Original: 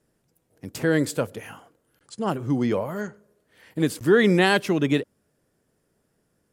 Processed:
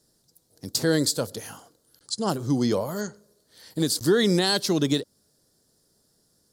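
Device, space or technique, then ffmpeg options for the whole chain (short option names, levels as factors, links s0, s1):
over-bright horn tweeter: -af "highshelf=f=3300:t=q:w=3:g=9.5,alimiter=limit=0.282:level=0:latency=1:release=211"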